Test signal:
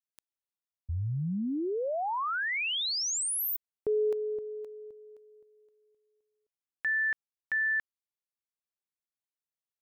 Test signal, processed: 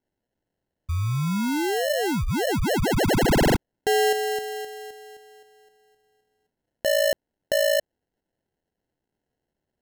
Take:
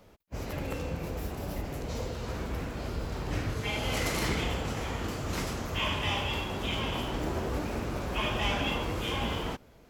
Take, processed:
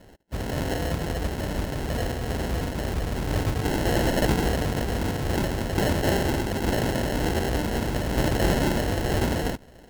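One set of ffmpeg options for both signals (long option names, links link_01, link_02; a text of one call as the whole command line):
ffmpeg -i in.wav -af "highshelf=frequency=5500:gain=6.5,acrusher=samples=37:mix=1:aa=0.000001,volume=7dB" out.wav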